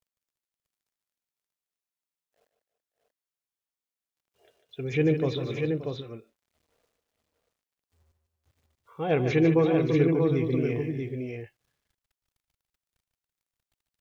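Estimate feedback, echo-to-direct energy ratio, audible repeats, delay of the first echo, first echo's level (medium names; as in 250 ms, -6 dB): no regular repeats, -3.0 dB, 4, 148 ms, -8.5 dB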